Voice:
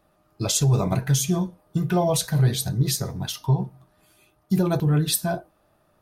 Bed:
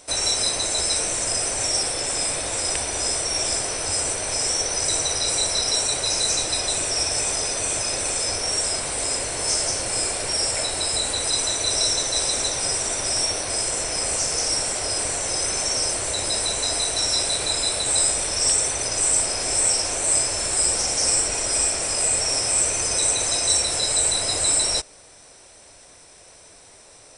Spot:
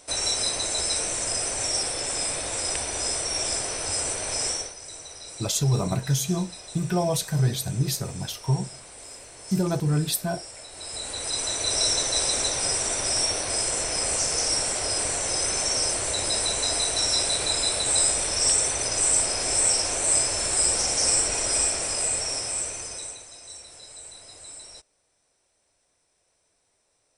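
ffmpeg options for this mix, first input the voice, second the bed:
-filter_complex "[0:a]adelay=5000,volume=-3dB[a];[1:a]volume=13dB,afade=t=out:st=4.47:d=0.27:silence=0.188365,afade=t=in:st=10.69:d=1.21:silence=0.149624,afade=t=out:st=21.51:d=1.75:silence=0.0891251[b];[a][b]amix=inputs=2:normalize=0"

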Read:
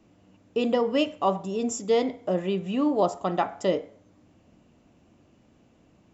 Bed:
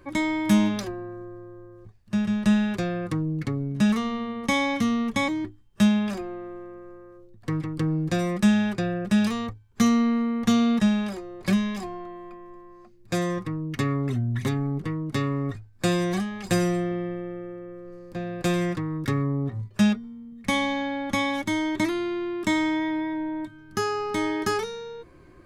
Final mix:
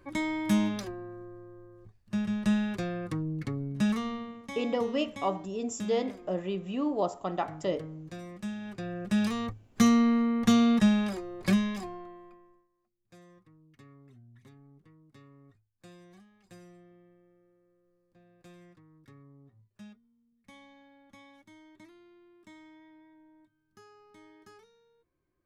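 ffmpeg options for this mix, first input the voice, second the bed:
-filter_complex "[0:a]adelay=4000,volume=-6dB[a];[1:a]volume=10dB,afade=t=out:st=4.1:d=0.35:silence=0.266073,afade=t=in:st=8.6:d=1.06:silence=0.158489,afade=t=out:st=11.4:d=1.28:silence=0.0398107[b];[a][b]amix=inputs=2:normalize=0"

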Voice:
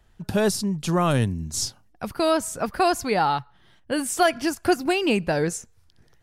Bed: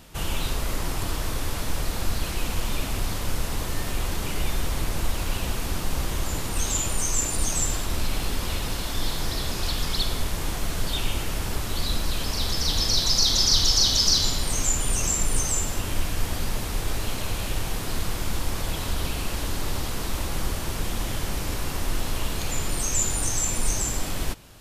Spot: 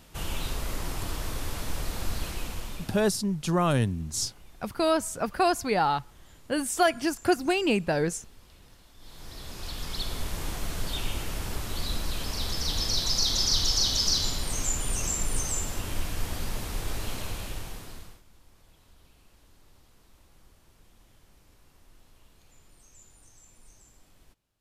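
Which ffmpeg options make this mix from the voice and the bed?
-filter_complex "[0:a]adelay=2600,volume=-3dB[a];[1:a]volume=17dB,afade=t=out:st=2.22:d=0.91:silence=0.0794328,afade=t=in:st=8.98:d=1.39:silence=0.0794328,afade=t=out:st=17.16:d=1.06:silence=0.0501187[b];[a][b]amix=inputs=2:normalize=0"

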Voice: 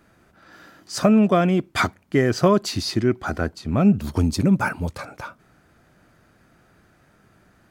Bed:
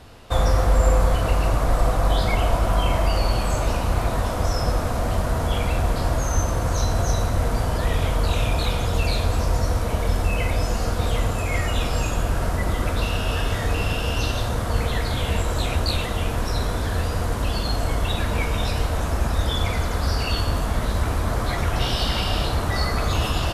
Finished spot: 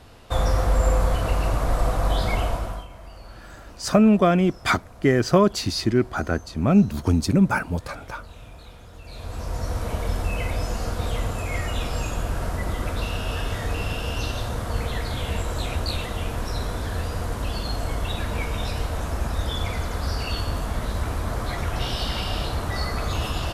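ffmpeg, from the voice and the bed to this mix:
-filter_complex "[0:a]adelay=2900,volume=0dB[a];[1:a]volume=15.5dB,afade=t=out:st=2.37:d=0.5:silence=0.105925,afade=t=in:st=9.04:d=0.82:silence=0.125893[b];[a][b]amix=inputs=2:normalize=0"

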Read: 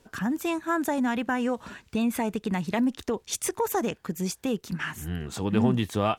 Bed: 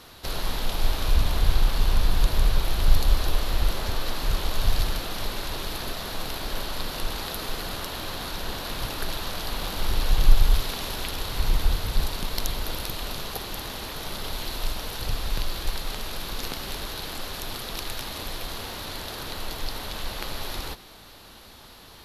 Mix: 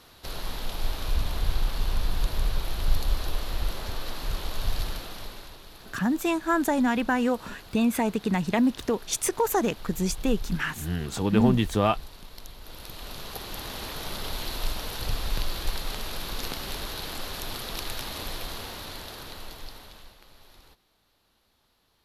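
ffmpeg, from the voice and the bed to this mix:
-filter_complex "[0:a]adelay=5800,volume=2.5dB[a];[1:a]volume=9.5dB,afade=t=out:st=4.91:d=0.68:silence=0.298538,afade=t=in:st=12.6:d=1.24:silence=0.177828,afade=t=out:st=18.3:d=1.88:silence=0.0944061[b];[a][b]amix=inputs=2:normalize=0"

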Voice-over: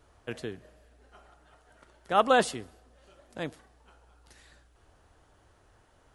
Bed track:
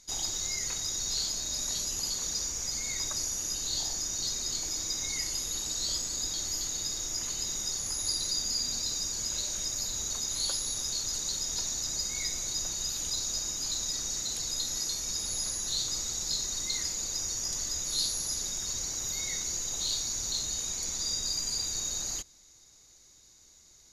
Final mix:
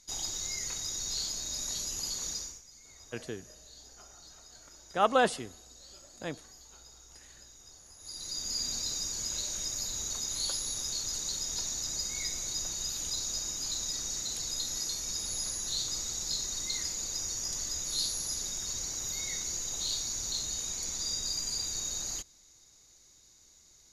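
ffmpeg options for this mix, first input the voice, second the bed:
-filter_complex "[0:a]adelay=2850,volume=-2.5dB[a];[1:a]volume=16dB,afade=t=out:st=2.3:d=0.32:silence=0.125893,afade=t=in:st=7.99:d=0.64:silence=0.112202[b];[a][b]amix=inputs=2:normalize=0"

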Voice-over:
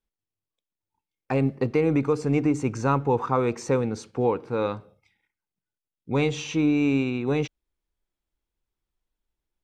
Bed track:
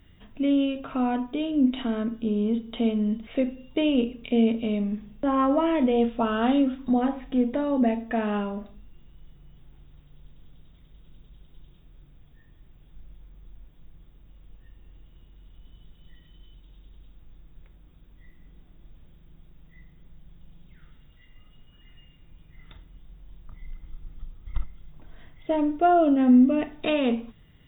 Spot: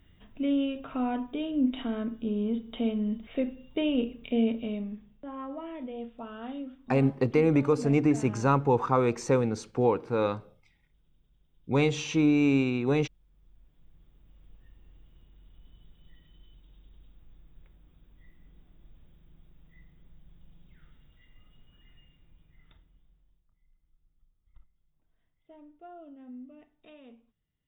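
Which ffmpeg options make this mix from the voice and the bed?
-filter_complex "[0:a]adelay=5600,volume=-1dB[a];[1:a]volume=7dB,afade=t=out:st=4.46:d=0.79:silence=0.251189,afade=t=in:st=13.22:d=1.22:silence=0.266073,afade=t=out:st=21.76:d=1.7:silence=0.0668344[b];[a][b]amix=inputs=2:normalize=0"

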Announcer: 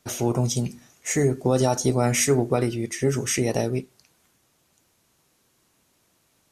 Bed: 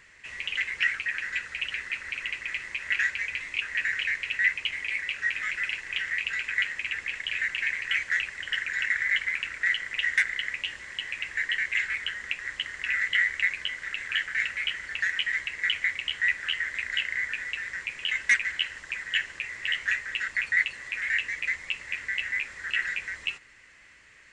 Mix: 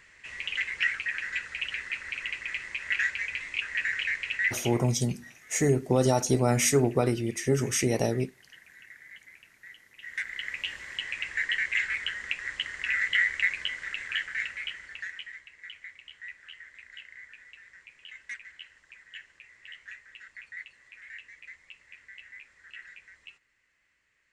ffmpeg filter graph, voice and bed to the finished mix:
-filter_complex "[0:a]adelay=4450,volume=-2.5dB[a];[1:a]volume=21.5dB,afade=t=out:st=4.34:d=0.57:silence=0.0794328,afade=t=in:st=9.98:d=0.75:silence=0.0707946,afade=t=out:st=13.67:d=1.74:silence=0.133352[b];[a][b]amix=inputs=2:normalize=0"

